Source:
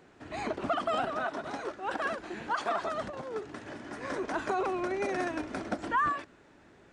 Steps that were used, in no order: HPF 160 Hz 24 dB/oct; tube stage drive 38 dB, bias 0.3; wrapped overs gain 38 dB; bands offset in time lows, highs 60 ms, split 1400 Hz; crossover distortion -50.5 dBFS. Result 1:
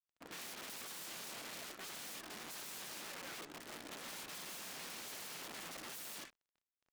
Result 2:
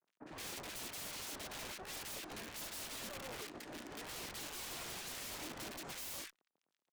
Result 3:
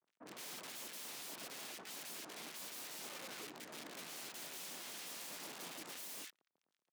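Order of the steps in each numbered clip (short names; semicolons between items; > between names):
bands offset in time > wrapped overs > HPF > crossover distortion > tube stage; crossover distortion > HPF > wrapped overs > bands offset in time > tube stage; wrapped overs > crossover distortion > bands offset in time > tube stage > HPF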